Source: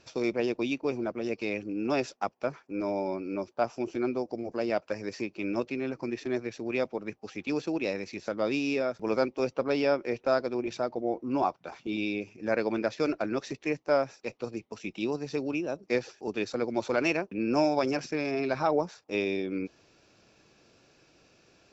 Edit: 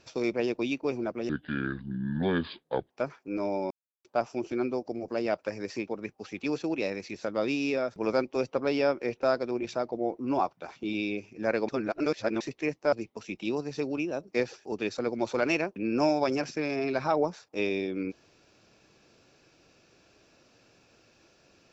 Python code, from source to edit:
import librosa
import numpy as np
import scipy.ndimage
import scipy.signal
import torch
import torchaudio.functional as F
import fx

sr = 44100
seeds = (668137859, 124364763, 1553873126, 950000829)

y = fx.edit(x, sr, fx.speed_span(start_s=1.29, length_s=1.05, speed=0.65),
    fx.silence(start_s=3.14, length_s=0.34),
    fx.cut(start_s=5.31, length_s=1.6),
    fx.reverse_span(start_s=12.72, length_s=0.72),
    fx.cut(start_s=13.96, length_s=0.52), tone=tone)